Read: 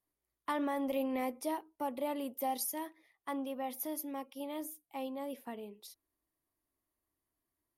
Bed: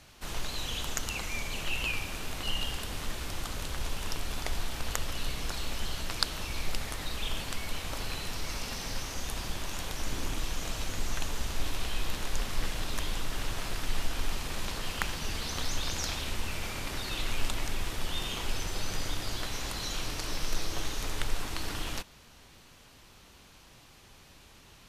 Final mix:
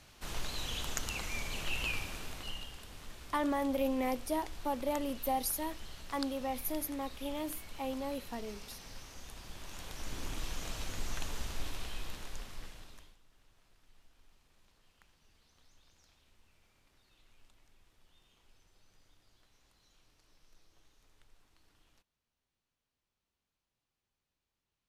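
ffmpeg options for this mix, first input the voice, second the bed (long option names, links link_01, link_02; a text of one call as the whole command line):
ffmpeg -i stem1.wav -i stem2.wav -filter_complex "[0:a]adelay=2850,volume=2dB[link_01];[1:a]volume=4.5dB,afade=type=out:start_time=1.95:duration=0.74:silence=0.316228,afade=type=in:start_time=9.43:duration=1.03:silence=0.398107,afade=type=out:start_time=11.38:duration=1.79:silence=0.0375837[link_02];[link_01][link_02]amix=inputs=2:normalize=0" out.wav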